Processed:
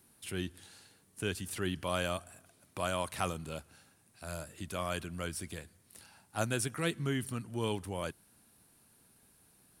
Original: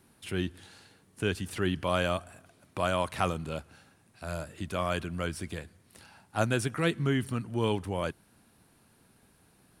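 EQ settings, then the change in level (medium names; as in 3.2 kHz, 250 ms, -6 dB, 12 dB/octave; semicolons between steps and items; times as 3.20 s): treble shelf 5.7 kHz +12 dB; -6.0 dB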